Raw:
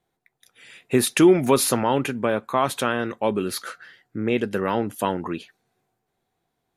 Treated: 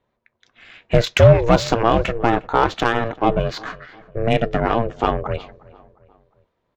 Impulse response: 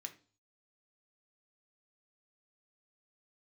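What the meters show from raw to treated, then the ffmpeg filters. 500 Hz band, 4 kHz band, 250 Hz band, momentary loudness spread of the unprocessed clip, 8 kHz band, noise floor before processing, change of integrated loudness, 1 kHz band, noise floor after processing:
+4.5 dB, +3.0 dB, −1.0 dB, 14 LU, −9.5 dB, −78 dBFS, +4.0 dB, +6.0 dB, −73 dBFS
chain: -filter_complex "[0:a]aresample=16000,volume=9.5dB,asoftclip=hard,volume=-9.5dB,aresample=44100,aeval=exprs='val(0)*sin(2*PI*230*n/s)':channel_layout=same,adynamicsmooth=sensitivity=1.5:basefreq=3800,asplit=2[link_01][link_02];[link_02]adelay=356,lowpass=frequency=2300:poles=1,volume=-22dB,asplit=2[link_03][link_04];[link_04]adelay=356,lowpass=frequency=2300:poles=1,volume=0.48,asplit=2[link_05][link_06];[link_06]adelay=356,lowpass=frequency=2300:poles=1,volume=0.48[link_07];[link_01][link_03][link_05][link_07]amix=inputs=4:normalize=0,volume=8dB"

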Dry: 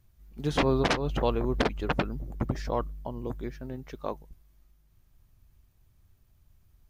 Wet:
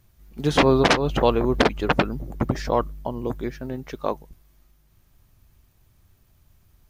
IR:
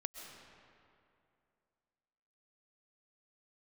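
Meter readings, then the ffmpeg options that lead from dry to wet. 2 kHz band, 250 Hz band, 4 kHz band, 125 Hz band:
+8.5 dB, +7.5 dB, +8.5 dB, +5.0 dB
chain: -af "lowshelf=frequency=110:gain=-7,volume=8.5dB"

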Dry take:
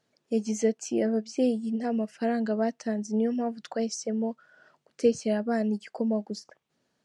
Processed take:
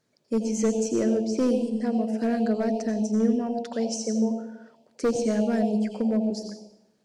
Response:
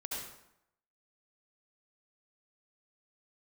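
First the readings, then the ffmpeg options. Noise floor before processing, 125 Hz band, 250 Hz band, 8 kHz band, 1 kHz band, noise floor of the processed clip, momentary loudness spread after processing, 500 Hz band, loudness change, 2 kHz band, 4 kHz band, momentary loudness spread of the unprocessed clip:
−77 dBFS, can't be measured, +4.0 dB, +3.5 dB, +1.5 dB, −69 dBFS, 6 LU, +2.0 dB, +3.0 dB, 0.0 dB, +2.5 dB, 6 LU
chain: -filter_complex "[0:a]volume=20dB,asoftclip=hard,volume=-20dB,asplit=2[link_01][link_02];[link_02]asuperstop=centerf=1500:order=12:qfactor=0.97[link_03];[1:a]atrim=start_sample=2205,asetrate=37926,aresample=44100[link_04];[link_03][link_04]afir=irnorm=-1:irlink=0,volume=-3dB[link_05];[link_01][link_05]amix=inputs=2:normalize=0"

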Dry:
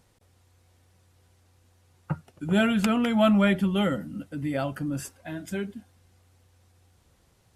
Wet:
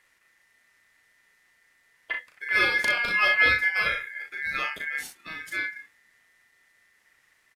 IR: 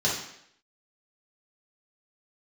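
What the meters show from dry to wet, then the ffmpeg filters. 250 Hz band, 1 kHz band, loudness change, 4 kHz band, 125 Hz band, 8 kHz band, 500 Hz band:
−23.0 dB, 0.0 dB, +2.0 dB, +4.0 dB, −18.5 dB, −1.5 dB, −9.5 dB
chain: -af "aecho=1:1:36|61:0.631|0.335,aeval=exprs='val(0)*sin(2*PI*1900*n/s)':channel_layout=same"

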